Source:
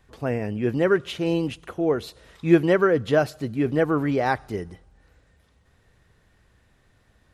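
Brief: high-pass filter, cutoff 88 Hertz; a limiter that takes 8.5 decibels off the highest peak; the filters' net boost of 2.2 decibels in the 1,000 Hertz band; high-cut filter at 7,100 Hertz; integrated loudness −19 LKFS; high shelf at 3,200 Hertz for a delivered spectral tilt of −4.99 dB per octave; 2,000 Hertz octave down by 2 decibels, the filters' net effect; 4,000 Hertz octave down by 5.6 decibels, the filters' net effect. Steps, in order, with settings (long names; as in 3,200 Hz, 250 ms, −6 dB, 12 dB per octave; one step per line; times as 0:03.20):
high-pass filter 88 Hz
low-pass filter 7,100 Hz
parametric band 1,000 Hz +4.5 dB
parametric band 2,000 Hz −3 dB
high-shelf EQ 3,200 Hz −3.5 dB
parametric band 4,000 Hz −4 dB
level +6 dB
brickwall limiter −7 dBFS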